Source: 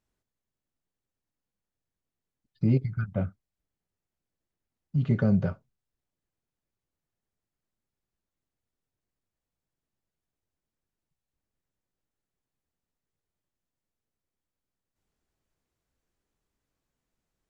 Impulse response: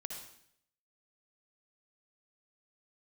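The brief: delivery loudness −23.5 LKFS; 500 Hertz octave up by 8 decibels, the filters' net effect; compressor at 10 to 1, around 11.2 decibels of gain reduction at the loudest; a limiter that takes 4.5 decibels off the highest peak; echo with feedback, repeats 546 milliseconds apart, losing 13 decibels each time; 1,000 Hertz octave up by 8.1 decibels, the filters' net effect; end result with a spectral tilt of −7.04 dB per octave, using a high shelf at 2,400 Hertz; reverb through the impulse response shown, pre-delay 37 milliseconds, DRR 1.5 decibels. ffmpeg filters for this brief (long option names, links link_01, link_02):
-filter_complex "[0:a]equalizer=frequency=500:width_type=o:gain=7.5,equalizer=frequency=1000:width_type=o:gain=8,highshelf=frequency=2400:gain=6,acompressor=threshold=-27dB:ratio=10,alimiter=limit=-22.5dB:level=0:latency=1,aecho=1:1:546|1092|1638:0.224|0.0493|0.0108,asplit=2[link_01][link_02];[1:a]atrim=start_sample=2205,adelay=37[link_03];[link_02][link_03]afir=irnorm=-1:irlink=0,volume=0.5dB[link_04];[link_01][link_04]amix=inputs=2:normalize=0,volume=11.5dB"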